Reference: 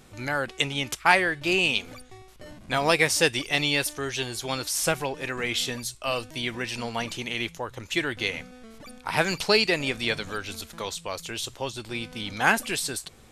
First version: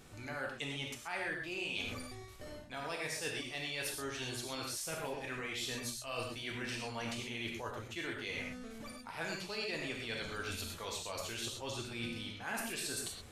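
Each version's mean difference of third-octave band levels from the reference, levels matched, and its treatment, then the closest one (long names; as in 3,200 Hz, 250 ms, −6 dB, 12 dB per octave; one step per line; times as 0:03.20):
7.5 dB: reversed playback
downward compressor 6 to 1, threshold −36 dBFS, peak gain reduction 21 dB
reversed playback
reverb whose tail is shaped and stops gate 150 ms flat, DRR −1 dB
level −4.5 dB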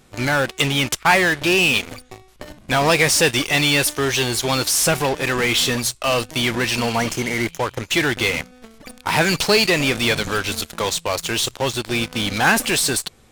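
5.5 dB: healed spectral selection 0:06.86–0:07.75, 2,300–4,900 Hz both
in parallel at −6 dB: fuzz pedal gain 35 dB, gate −40 dBFS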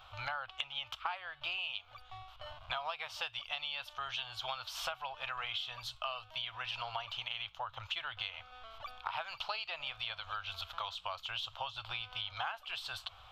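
11.0 dB: drawn EQ curve 110 Hz 0 dB, 190 Hz −28 dB, 400 Hz −22 dB, 660 Hz +6 dB, 1,300 Hz +12 dB, 1,900 Hz −4 dB, 3,100 Hz +12 dB, 6,400 Hz −12 dB, 10,000 Hz −22 dB, 15,000 Hz −2 dB
downward compressor 10 to 1, threshold −31 dBFS, peak gain reduction 24 dB
level −5 dB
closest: second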